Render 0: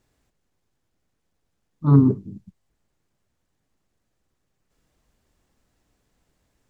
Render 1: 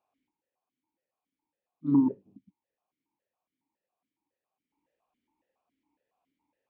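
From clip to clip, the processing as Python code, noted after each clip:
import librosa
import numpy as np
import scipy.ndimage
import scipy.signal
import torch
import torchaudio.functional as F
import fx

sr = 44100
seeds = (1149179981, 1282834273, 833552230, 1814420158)

y = fx.peak_eq(x, sr, hz=930.0, db=12.5, octaves=0.36)
y = fx.vowel_held(y, sr, hz=7.2)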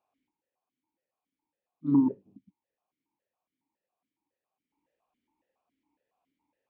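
y = x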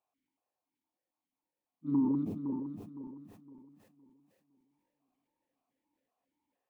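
y = fx.reverse_delay_fb(x, sr, ms=256, feedback_pct=58, wet_db=-3.0)
y = fx.sustainer(y, sr, db_per_s=41.0)
y = y * 10.0 ** (-7.0 / 20.0)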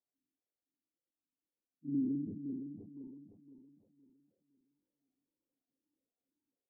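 y = fx.env_lowpass_down(x, sr, base_hz=380.0, full_db=-35.0)
y = fx.ladder_lowpass(y, sr, hz=530.0, resonance_pct=25)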